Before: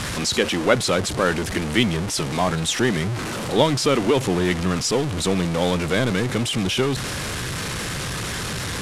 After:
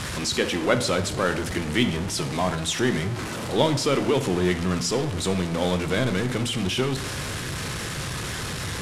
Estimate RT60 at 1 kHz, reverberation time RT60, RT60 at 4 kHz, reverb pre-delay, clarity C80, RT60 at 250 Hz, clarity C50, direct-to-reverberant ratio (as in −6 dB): 0.75 s, 0.80 s, 0.60 s, 3 ms, 14.5 dB, 0.90 s, 11.5 dB, 7.5 dB